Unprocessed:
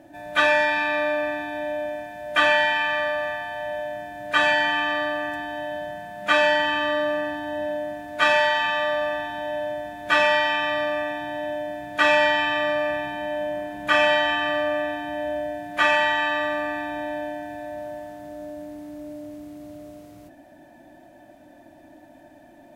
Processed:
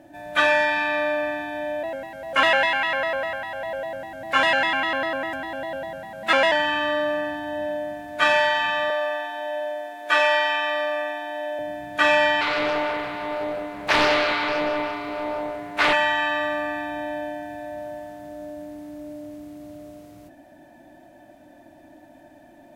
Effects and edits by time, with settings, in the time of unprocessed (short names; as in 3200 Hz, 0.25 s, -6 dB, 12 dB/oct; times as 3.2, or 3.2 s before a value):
1.83–6.52 shaped vibrato square 5 Hz, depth 160 cents
8.9–11.59 HPF 340 Hz 24 dB/oct
12.41–15.93 Doppler distortion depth 0.62 ms